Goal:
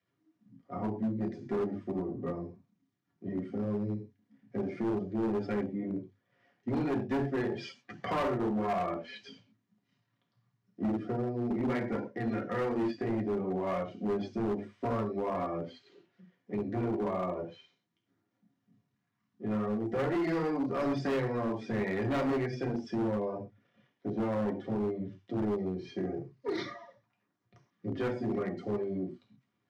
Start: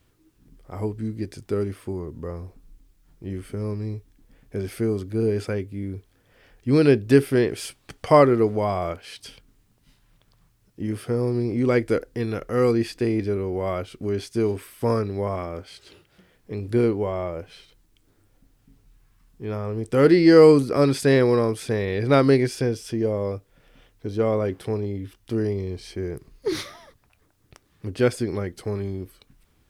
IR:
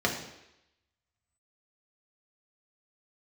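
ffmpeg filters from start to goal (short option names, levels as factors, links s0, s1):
-filter_complex "[0:a]aeval=exprs='if(lt(val(0),0),0.447*val(0),val(0))':c=same,bandreject=f=50:t=h:w=6,bandreject=f=100:t=h:w=6,bandreject=f=150:t=h:w=6,bandreject=f=200:t=h:w=6,bandreject=f=250:t=h:w=6,asplit=3[s0][s1][s2];[s0]afade=t=out:st=9.06:d=0.02[s3];[s1]adynamicequalizer=threshold=0.0158:dfrequency=320:dqfactor=0.75:tfrequency=320:tqfactor=0.75:attack=5:release=100:ratio=0.375:range=2.5:mode=boostabove:tftype=bell,afade=t=in:st=9.06:d=0.02,afade=t=out:st=11.52:d=0.02[s4];[s2]afade=t=in:st=11.52:d=0.02[s5];[s3][s4][s5]amix=inputs=3:normalize=0,acompressor=threshold=0.0316:ratio=2.5,flanger=delay=1.7:depth=8.9:regen=-51:speed=0.8:shape=sinusoidal[s6];[1:a]atrim=start_sample=2205,atrim=end_sample=6174[s7];[s6][s7]afir=irnorm=-1:irlink=0,afftdn=nr=13:nf=-37,highpass=f=130:w=0.5412,highpass=f=130:w=1.3066,equalizer=f=460:t=q:w=4:g=-9,equalizer=f=1000:t=q:w=4:g=4,equalizer=f=4800:t=q:w=4:g=-3,lowpass=f=6700:w=0.5412,lowpass=f=6700:w=1.3066,asoftclip=type=hard:threshold=0.0794,volume=0.562"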